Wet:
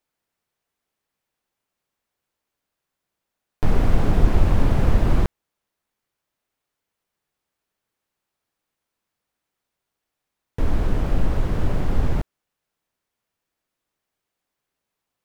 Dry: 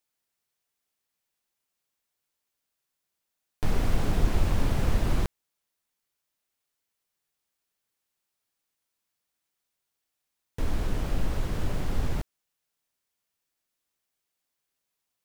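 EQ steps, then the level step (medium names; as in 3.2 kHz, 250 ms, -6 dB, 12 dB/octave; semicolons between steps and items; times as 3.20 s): treble shelf 2.7 kHz -11 dB; +7.5 dB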